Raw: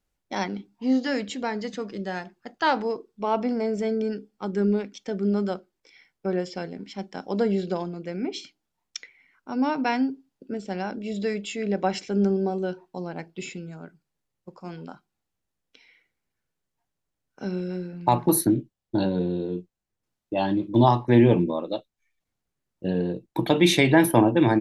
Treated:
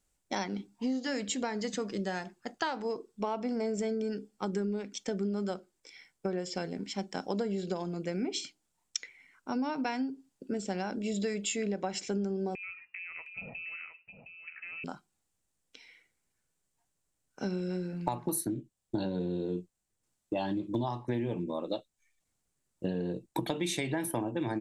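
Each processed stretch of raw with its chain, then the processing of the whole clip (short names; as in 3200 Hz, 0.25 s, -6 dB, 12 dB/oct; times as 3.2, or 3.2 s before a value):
12.55–14.84 compressor, threshold -39 dBFS + inverted band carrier 2800 Hz + echo 0.713 s -9 dB
whole clip: bell 8100 Hz +12 dB 0.8 oct; compressor 12:1, threshold -29 dBFS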